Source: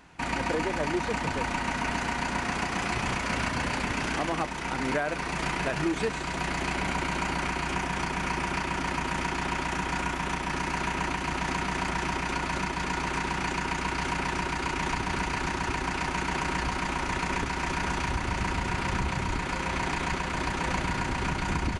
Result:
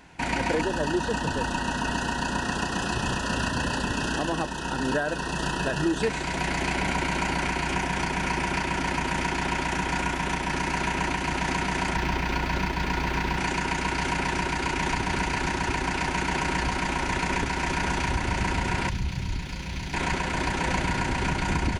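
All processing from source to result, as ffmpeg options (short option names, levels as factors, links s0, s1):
-filter_complex "[0:a]asettb=1/sr,asplit=3[s0][s1][s2];[s0]atrim=end=0.614[s3];[s1]atrim=start=0.61:end=6.03,asetpts=PTS-STARTPTS,afade=t=in:d=0.004:c=qsin,afade=t=out:st=5.416:d=0.004:c=qsin,asuperstop=centerf=2200:order=20:qfactor=3.6,equalizer=f=740:w=3.6:g=-4[s4];[s2]atrim=start=6.026[s5];[s3][s4]acrossfade=d=0.004:c1=hsin:c2=qsin[s6];[s6][s5]acrossfade=d=0.004:c1=qsin:c2=hsin,asettb=1/sr,asplit=3[s7][s8][s9];[s7]atrim=end=11.964[s10];[s8]atrim=start=11.96:end=13.38,asetpts=PTS-STARTPTS,afade=t=in:d=0.004:c=qsin,afade=t=out:st=1.416:d=0.004:c=qsin,lowpass=f=5700:w=0.5412,lowpass=f=5700:w=1.3066,lowshelf=f=100:g=8,aeval=exprs='sgn(val(0))*max(abs(val(0))-0.00501,0)':c=same[s11];[s9]atrim=start=13.376[s12];[s10][s11]acrossfade=d=0.004:c1=hsin:c2=qsin[s13];[s13][s12]acrossfade=d=0.004:c1=qsin:c2=hsin,asettb=1/sr,asplit=3[s14][s15][s16];[s14]atrim=end=18.894[s17];[s15]atrim=start=18.89:end=19.94,asetpts=PTS-STARTPTS,afade=t=in:d=0.004:c=qsin,afade=t=out:st=1.046:d=0.004:c=qsin,equalizer=f=8300:t=o:w=0.52:g=-14,acrossover=split=200|3000[s18][s19][s20];[s19]acompressor=threshold=0.00178:ratio=2:attack=3.2:release=140:knee=2.83:detection=peak[s21];[s18][s21][s20]amix=inputs=3:normalize=0,aeval=exprs='sgn(val(0))*max(abs(val(0))-0.00141,0)':c=same[s22];[s16]atrim=start=19.936[s23];[s17][s22]acrossfade=d=0.004:c1=hsin:c2=qsin[s24];[s24][s23]acrossfade=d=0.004:c1=qsin:c2=hsin,acontrast=60,bandreject=f=1200:w=5.6,volume=0.708"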